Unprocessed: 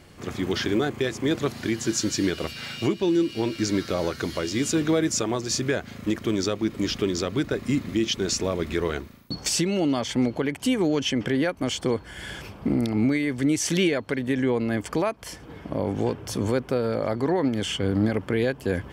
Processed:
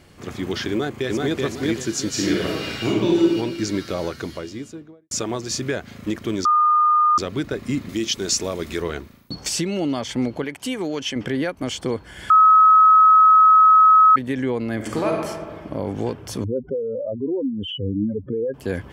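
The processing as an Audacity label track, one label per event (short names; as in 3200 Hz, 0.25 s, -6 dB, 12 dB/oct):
0.710000	1.420000	echo throw 0.38 s, feedback 30%, level -1.5 dB
2.090000	3.360000	reverb throw, RT60 1.1 s, DRR -4 dB
3.990000	5.110000	studio fade out
6.450000	7.180000	bleep 1220 Hz -13 dBFS
7.890000	8.820000	tone controls bass -3 dB, treble +7 dB
10.440000	11.160000	low shelf 310 Hz -8 dB
12.300000	14.160000	bleep 1280 Hz -8.5 dBFS
14.750000	15.250000	reverb throw, RT60 1.7 s, DRR -1 dB
16.440000	18.540000	spectral contrast raised exponent 3.5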